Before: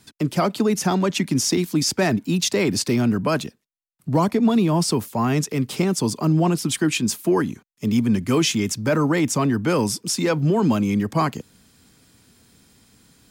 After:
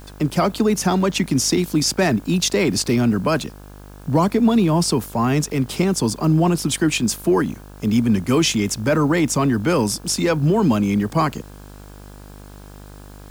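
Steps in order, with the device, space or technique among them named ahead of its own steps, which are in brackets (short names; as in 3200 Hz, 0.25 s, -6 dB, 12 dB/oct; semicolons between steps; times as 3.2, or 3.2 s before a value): video cassette with head-switching buzz (buzz 50 Hz, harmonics 34, -42 dBFS -5 dB/oct; white noise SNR 34 dB); gain +2 dB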